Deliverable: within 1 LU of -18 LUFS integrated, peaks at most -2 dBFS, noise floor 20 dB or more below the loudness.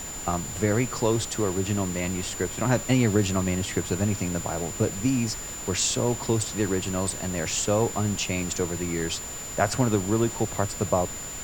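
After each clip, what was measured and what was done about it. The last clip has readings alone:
steady tone 7.1 kHz; tone level -35 dBFS; noise floor -36 dBFS; noise floor target -46 dBFS; loudness -26.0 LUFS; peak level -7.0 dBFS; loudness target -18.0 LUFS
-> band-stop 7.1 kHz, Q 30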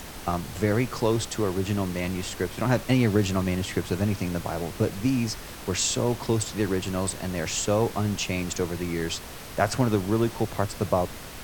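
steady tone not found; noise floor -40 dBFS; noise floor target -47 dBFS
-> noise print and reduce 7 dB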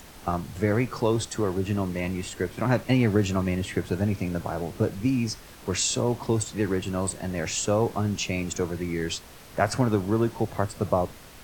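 noise floor -47 dBFS; loudness -27.0 LUFS; peak level -7.5 dBFS; loudness target -18.0 LUFS
-> trim +9 dB; peak limiter -2 dBFS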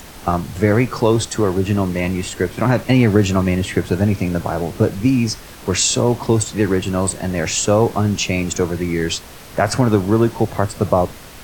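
loudness -18.0 LUFS; peak level -2.0 dBFS; noise floor -38 dBFS

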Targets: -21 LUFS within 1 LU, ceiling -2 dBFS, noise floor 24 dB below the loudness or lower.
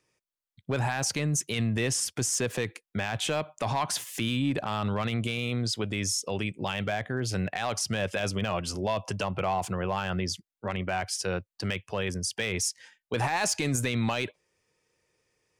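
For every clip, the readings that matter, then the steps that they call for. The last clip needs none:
clipped samples 0.4%; clipping level -20.0 dBFS; loudness -30.0 LUFS; peak level -20.0 dBFS; loudness target -21.0 LUFS
-> clip repair -20 dBFS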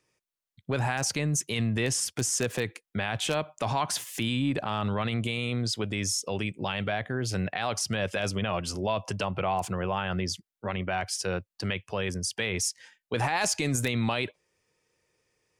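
clipped samples 0.0%; loudness -29.5 LUFS; peak level -11.0 dBFS; loudness target -21.0 LUFS
-> trim +8.5 dB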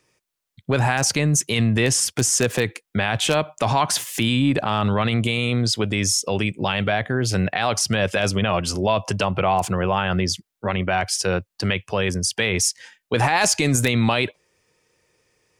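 loudness -21.0 LUFS; peak level -2.5 dBFS; noise floor -82 dBFS

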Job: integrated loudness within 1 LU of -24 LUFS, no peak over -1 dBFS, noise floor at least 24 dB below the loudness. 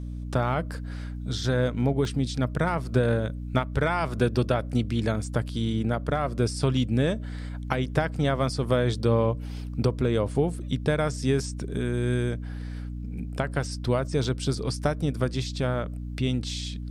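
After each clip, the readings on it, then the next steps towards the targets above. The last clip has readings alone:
dropouts 2; longest dropout 1.6 ms; hum 60 Hz; highest harmonic 300 Hz; hum level -32 dBFS; loudness -27.5 LUFS; peak level -8.0 dBFS; loudness target -24.0 LUFS
-> interpolate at 2.05/14.24 s, 1.6 ms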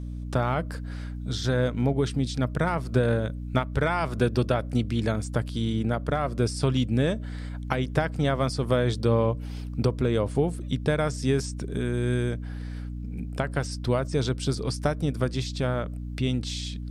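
dropouts 0; hum 60 Hz; highest harmonic 300 Hz; hum level -32 dBFS
-> de-hum 60 Hz, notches 5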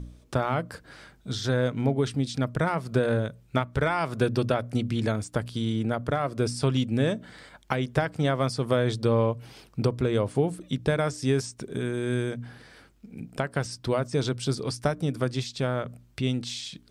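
hum not found; loudness -28.0 LUFS; peak level -8.5 dBFS; loudness target -24.0 LUFS
-> trim +4 dB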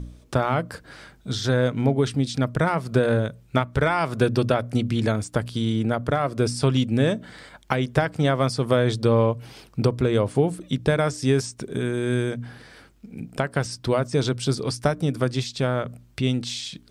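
loudness -24.0 LUFS; peak level -4.5 dBFS; noise floor -54 dBFS

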